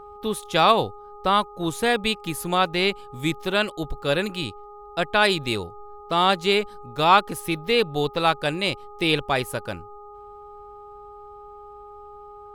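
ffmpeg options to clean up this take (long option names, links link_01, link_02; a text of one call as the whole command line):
ffmpeg -i in.wav -af "bandreject=frequency=413:width_type=h:width=4,bandreject=frequency=826:width_type=h:width=4,bandreject=frequency=1239:width_type=h:width=4" out.wav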